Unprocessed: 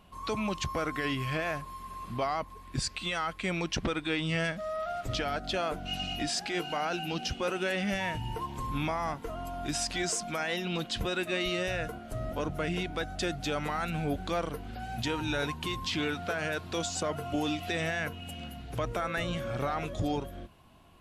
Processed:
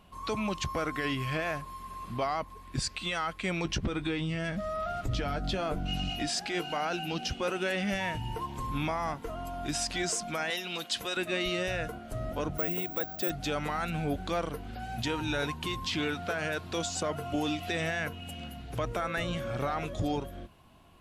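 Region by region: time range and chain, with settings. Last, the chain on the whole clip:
3.65–6.1 low shelf 260 Hz +12 dB + compressor 5:1, threshold -27 dBFS + doubler 15 ms -10 dB
10.5–11.17 HPF 640 Hz 6 dB/oct + high shelf 5600 Hz +8 dB
12.58–13.3 HPF 630 Hz 6 dB/oct + tilt shelf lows +7 dB, about 920 Hz + careless resampling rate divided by 2×, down none, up zero stuff
whole clip: dry

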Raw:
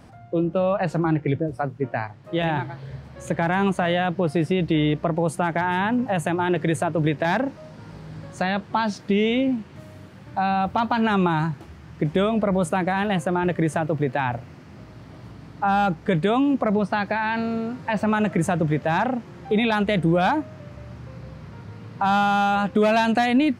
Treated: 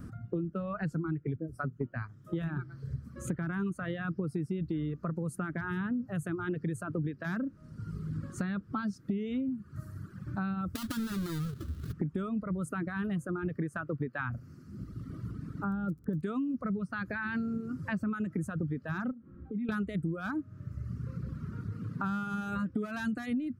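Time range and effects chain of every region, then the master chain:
10.75–11.93 half-waves squared off + bell 3800 Hz +12 dB 1 oct + compressor, threshold -25 dBFS
13.57–14.3 bell 1300 Hz +7 dB 2.6 oct + upward expander, over -27 dBFS
15.62–16.21 running mean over 19 samples + crackle 12/s -30 dBFS
19.11–19.69 compressor 3:1, threshold -37 dBFS + tape spacing loss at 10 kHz 43 dB + comb 3.7 ms, depth 56%
whole clip: reverb removal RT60 1.4 s; EQ curve 250 Hz 0 dB, 420 Hz -7 dB, 840 Hz -25 dB, 1300 Hz -2 dB, 2100 Hz -16 dB, 3400 Hz -17 dB, 12000 Hz -4 dB; compressor 6:1, threshold -37 dBFS; gain +5.5 dB

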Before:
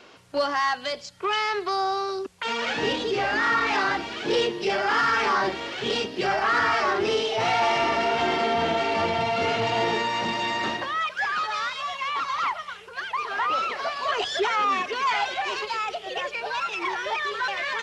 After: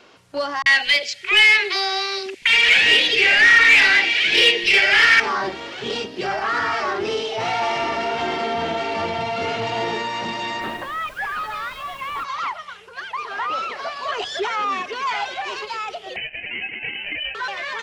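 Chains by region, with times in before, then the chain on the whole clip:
0.62–5.2 resonant high shelf 1600 Hz +10.5 dB, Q 3 + overdrive pedal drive 12 dB, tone 2400 Hz, clips at -2 dBFS + three bands offset in time lows, highs, mids 40/80 ms, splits 240/930 Hz
10.6–12.23 LPF 3000 Hz + added noise pink -47 dBFS
16.16–17.35 sample-rate reducer 1800 Hz + air absorption 180 m + inverted band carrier 3000 Hz
whole clip: dry

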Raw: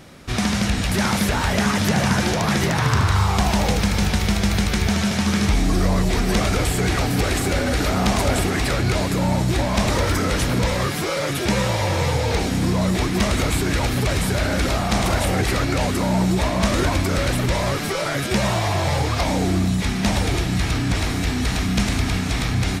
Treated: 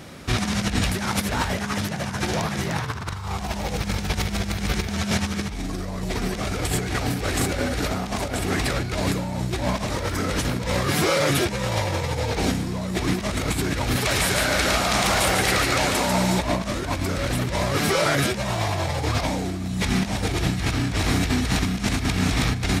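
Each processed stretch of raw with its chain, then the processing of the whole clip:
13.96–16.39 low shelf 470 Hz -11.5 dB + echo 0.145 s -4 dB
whole clip: HPF 41 Hz 12 dB/oct; negative-ratio compressor -23 dBFS, ratio -0.5

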